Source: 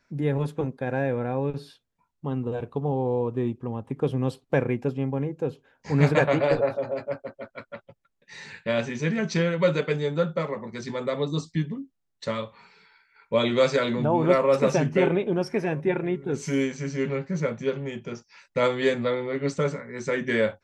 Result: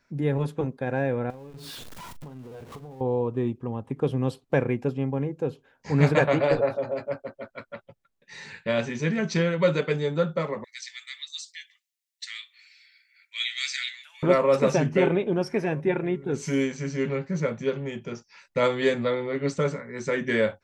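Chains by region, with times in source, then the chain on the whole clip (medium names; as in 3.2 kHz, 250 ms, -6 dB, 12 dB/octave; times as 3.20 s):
1.30–3.01 s: jump at every zero crossing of -35 dBFS + compression 16:1, threshold -38 dBFS + doubling 39 ms -13 dB
10.64–14.23 s: Chebyshev high-pass 1.9 kHz, order 4 + tilt EQ +2 dB/octave
whole clip: none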